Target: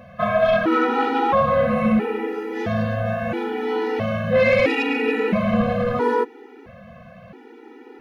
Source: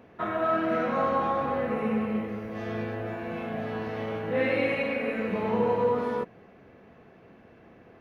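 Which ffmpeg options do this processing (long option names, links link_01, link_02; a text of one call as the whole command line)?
ffmpeg -i in.wav -af "aeval=exprs='0.211*sin(PI/2*1.78*val(0)/0.211)':channel_layout=same,afftfilt=real='re*gt(sin(2*PI*0.75*pts/sr)*(1-2*mod(floor(b*sr/1024/250),2)),0)':imag='im*gt(sin(2*PI*0.75*pts/sr)*(1-2*mod(floor(b*sr/1024/250),2)),0)':win_size=1024:overlap=0.75,volume=4.5dB" out.wav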